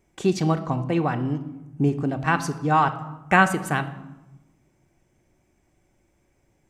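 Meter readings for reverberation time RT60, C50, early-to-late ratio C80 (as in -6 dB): 1.0 s, 13.5 dB, 15.5 dB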